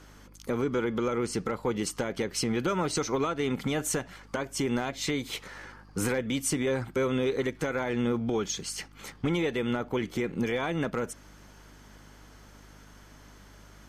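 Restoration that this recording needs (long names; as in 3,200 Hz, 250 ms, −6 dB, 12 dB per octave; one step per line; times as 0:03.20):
clipped peaks rebuilt −19 dBFS
hum removal 50.6 Hz, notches 6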